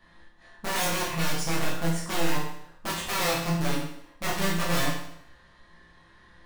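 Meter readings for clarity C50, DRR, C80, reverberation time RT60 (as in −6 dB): 3.0 dB, −6.5 dB, 6.0 dB, 0.70 s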